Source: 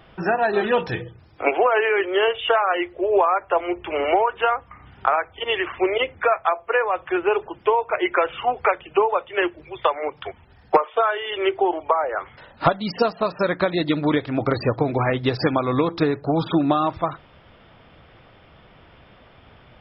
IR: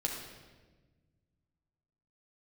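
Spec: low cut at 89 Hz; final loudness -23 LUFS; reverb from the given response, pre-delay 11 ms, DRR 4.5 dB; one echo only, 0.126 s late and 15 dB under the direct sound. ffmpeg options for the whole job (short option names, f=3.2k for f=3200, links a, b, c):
-filter_complex "[0:a]highpass=89,aecho=1:1:126:0.178,asplit=2[a][b];[1:a]atrim=start_sample=2205,adelay=11[c];[b][c]afir=irnorm=-1:irlink=0,volume=-8dB[d];[a][d]amix=inputs=2:normalize=0,volume=-2.5dB"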